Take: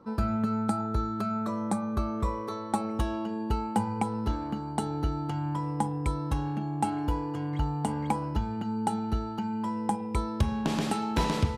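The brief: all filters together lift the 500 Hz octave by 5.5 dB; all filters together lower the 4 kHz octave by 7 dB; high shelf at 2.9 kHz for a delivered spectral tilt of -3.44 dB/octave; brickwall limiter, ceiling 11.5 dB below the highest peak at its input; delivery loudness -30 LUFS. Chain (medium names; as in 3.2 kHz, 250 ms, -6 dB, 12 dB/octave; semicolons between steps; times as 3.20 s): peaking EQ 500 Hz +7 dB; treble shelf 2.9 kHz -6 dB; peaking EQ 4 kHz -4.5 dB; trim +2 dB; peak limiter -21 dBFS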